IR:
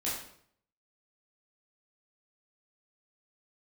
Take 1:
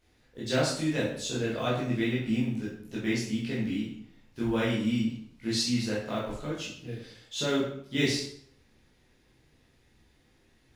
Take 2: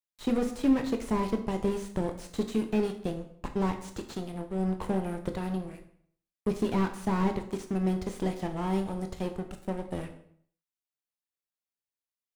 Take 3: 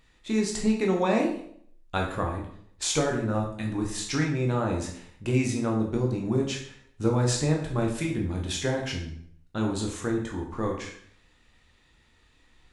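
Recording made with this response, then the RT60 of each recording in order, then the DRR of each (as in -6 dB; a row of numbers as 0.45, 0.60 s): 1; 0.65, 0.65, 0.65 s; -8.0, 5.5, -0.5 dB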